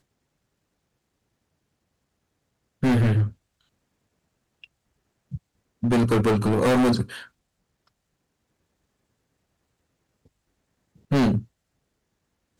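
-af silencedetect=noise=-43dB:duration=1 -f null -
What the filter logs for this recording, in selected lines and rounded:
silence_start: 0.00
silence_end: 2.83 | silence_duration: 2.83
silence_start: 3.33
silence_end: 4.64 | silence_duration: 1.31
silence_start: 7.27
silence_end: 11.11 | silence_duration: 3.84
silence_start: 11.45
silence_end: 12.60 | silence_duration: 1.15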